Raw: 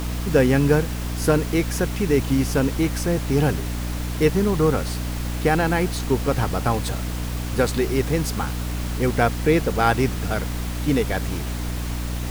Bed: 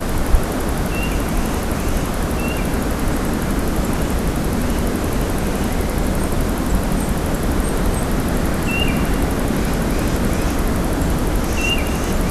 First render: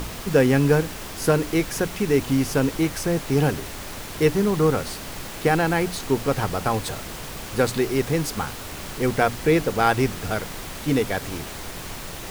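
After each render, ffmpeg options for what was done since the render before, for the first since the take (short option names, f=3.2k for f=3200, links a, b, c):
-af "bandreject=f=60:t=h:w=6,bandreject=f=120:t=h:w=6,bandreject=f=180:t=h:w=6,bandreject=f=240:t=h:w=6,bandreject=f=300:t=h:w=6"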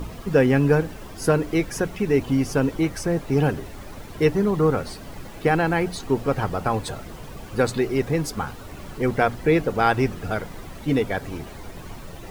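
-af "afftdn=nr=12:nf=-35"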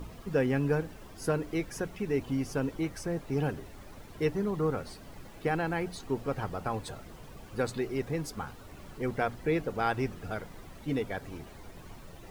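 -af "volume=-10dB"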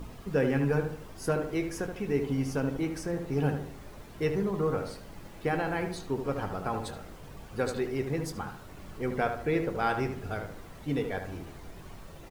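-filter_complex "[0:a]asplit=2[a][b];[b]adelay=21,volume=-11dB[c];[a][c]amix=inputs=2:normalize=0,asplit=2[d][e];[e]adelay=75,lowpass=f=2k:p=1,volume=-6dB,asplit=2[f][g];[g]adelay=75,lowpass=f=2k:p=1,volume=0.43,asplit=2[h][i];[i]adelay=75,lowpass=f=2k:p=1,volume=0.43,asplit=2[j][k];[k]adelay=75,lowpass=f=2k:p=1,volume=0.43,asplit=2[l][m];[m]adelay=75,lowpass=f=2k:p=1,volume=0.43[n];[f][h][j][l][n]amix=inputs=5:normalize=0[o];[d][o]amix=inputs=2:normalize=0"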